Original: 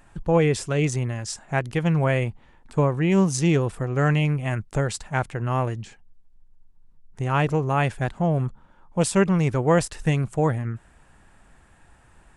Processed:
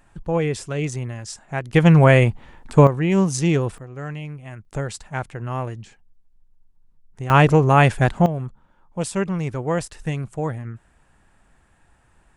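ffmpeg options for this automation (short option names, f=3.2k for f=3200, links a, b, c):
-af "asetnsamples=n=441:p=0,asendcmd='1.74 volume volume 9dB;2.87 volume volume 1dB;3.78 volume volume -11dB;4.65 volume volume -3dB;7.3 volume volume 8dB;8.26 volume volume -4dB',volume=-2.5dB"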